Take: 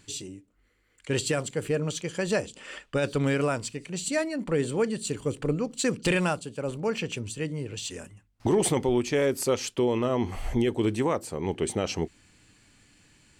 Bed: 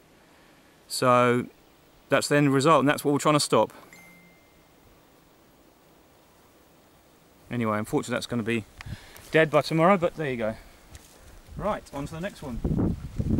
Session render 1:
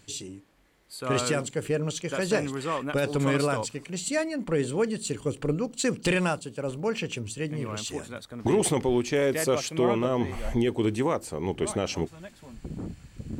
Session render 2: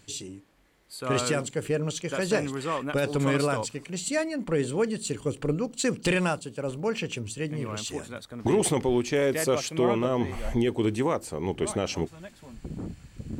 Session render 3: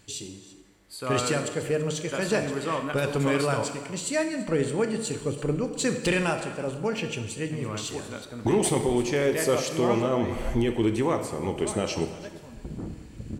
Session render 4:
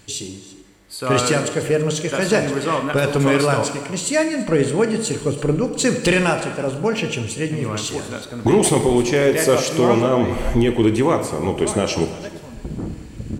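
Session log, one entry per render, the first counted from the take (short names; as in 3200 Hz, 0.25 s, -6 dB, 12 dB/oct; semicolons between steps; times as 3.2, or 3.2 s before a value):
add bed -11 dB
nothing audible
echo 0.335 s -18 dB; plate-style reverb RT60 1.3 s, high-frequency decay 0.8×, DRR 6 dB
gain +8 dB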